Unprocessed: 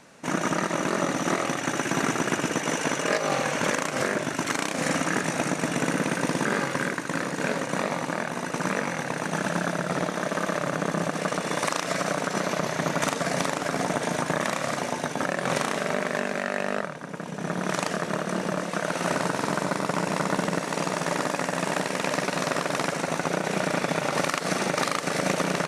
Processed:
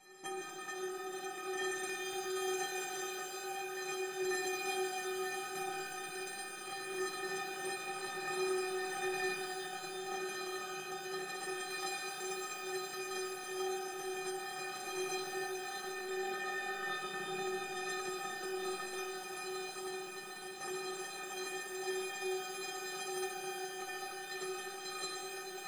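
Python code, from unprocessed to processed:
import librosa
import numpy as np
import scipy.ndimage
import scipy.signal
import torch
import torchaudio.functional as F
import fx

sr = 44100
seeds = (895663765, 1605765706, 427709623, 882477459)

y = x + 0.47 * np.pad(x, (int(5.4 * sr / 1000.0), 0))[:len(x)]
y = fx.over_compress(y, sr, threshold_db=-31.0, ratio=-0.5)
y = fx.stiff_resonator(y, sr, f0_hz=370.0, decay_s=0.6, stiffness=0.03)
y = fx.rev_shimmer(y, sr, seeds[0], rt60_s=3.5, semitones=12, shimmer_db=-8, drr_db=-1.0)
y = y * 10.0 ** (7.0 / 20.0)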